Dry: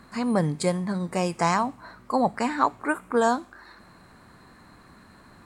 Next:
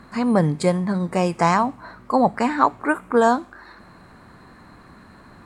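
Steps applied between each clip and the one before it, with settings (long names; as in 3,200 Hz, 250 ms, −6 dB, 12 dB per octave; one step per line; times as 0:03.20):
high-shelf EQ 3,700 Hz −7.5 dB
level +5.5 dB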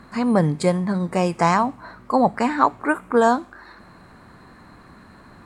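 no processing that can be heard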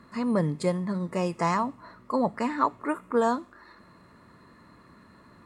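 notch comb filter 770 Hz
level −6.5 dB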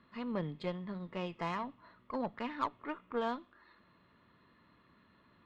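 transistor ladder low-pass 3,600 Hz, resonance 65%
harmonic generator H 3 −21 dB, 4 −27 dB, 8 −34 dB, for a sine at −20.5 dBFS
level +1 dB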